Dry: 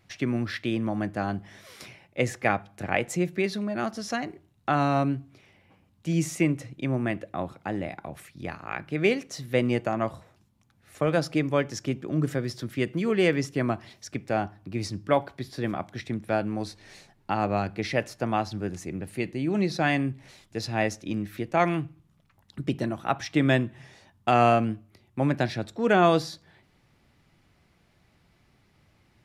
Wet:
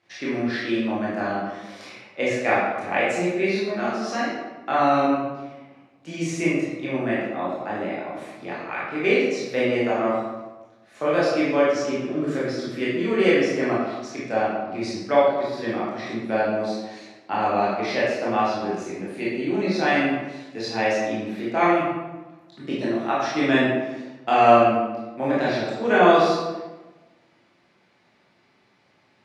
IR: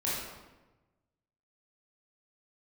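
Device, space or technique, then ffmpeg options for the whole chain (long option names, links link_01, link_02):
supermarket ceiling speaker: -filter_complex "[0:a]highpass=290,lowpass=6000[link_01];[1:a]atrim=start_sample=2205[link_02];[link_01][link_02]afir=irnorm=-1:irlink=0,volume=-1dB"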